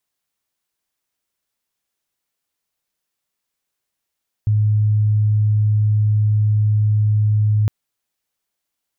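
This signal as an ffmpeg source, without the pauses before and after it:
ffmpeg -f lavfi -i "aevalsrc='0.237*sin(2*PI*106*t)':duration=3.21:sample_rate=44100" out.wav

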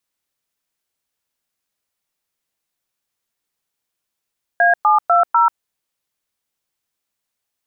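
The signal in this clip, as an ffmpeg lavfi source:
ffmpeg -f lavfi -i "aevalsrc='0.237*clip(min(mod(t,0.248),0.138-mod(t,0.248))/0.002,0,1)*(eq(floor(t/0.248),0)*(sin(2*PI*697*mod(t,0.248))+sin(2*PI*1633*mod(t,0.248)))+eq(floor(t/0.248),1)*(sin(2*PI*852*mod(t,0.248))+sin(2*PI*1209*mod(t,0.248)))+eq(floor(t/0.248),2)*(sin(2*PI*697*mod(t,0.248))+sin(2*PI*1336*mod(t,0.248)))+eq(floor(t/0.248),3)*(sin(2*PI*941*mod(t,0.248))+sin(2*PI*1336*mod(t,0.248))))':duration=0.992:sample_rate=44100" out.wav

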